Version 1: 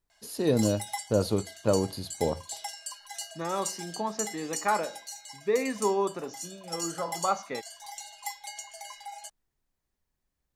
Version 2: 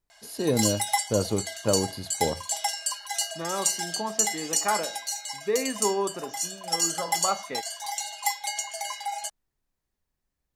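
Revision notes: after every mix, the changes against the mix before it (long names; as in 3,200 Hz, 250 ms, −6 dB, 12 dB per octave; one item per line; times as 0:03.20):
background +10.0 dB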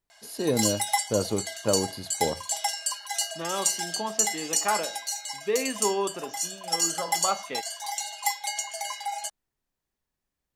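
second voice: remove Butterworth band-reject 3,000 Hz, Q 2.6
master: add low-shelf EQ 110 Hz −7 dB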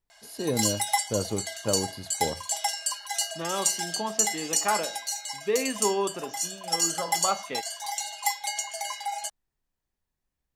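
first voice −3.5 dB
master: add low-shelf EQ 110 Hz +7 dB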